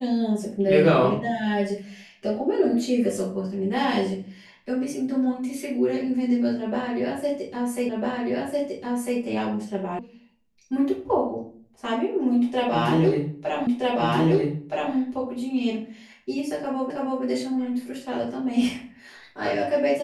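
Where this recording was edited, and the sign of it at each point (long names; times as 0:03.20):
0:07.89: the same again, the last 1.3 s
0:09.99: cut off before it has died away
0:13.67: the same again, the last 1.27 s
0:16.90: the same again, the last 0.32 s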